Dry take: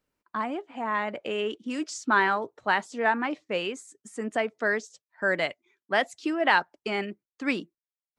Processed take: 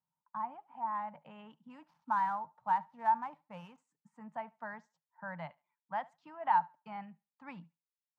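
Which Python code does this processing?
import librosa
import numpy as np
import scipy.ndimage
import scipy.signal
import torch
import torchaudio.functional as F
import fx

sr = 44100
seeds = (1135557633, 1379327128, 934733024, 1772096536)

y = fx.dead_time(x, sr, dead_ms=0.057, at=(1.82, 3.78))
y = fx.double_bandpass(y, sr, hz=380.0, octaves=2.5)
y = fx.echo_thinned(y, sr, ms=72, feedback_pct=21, hz=360.0, wet_db=-23.0)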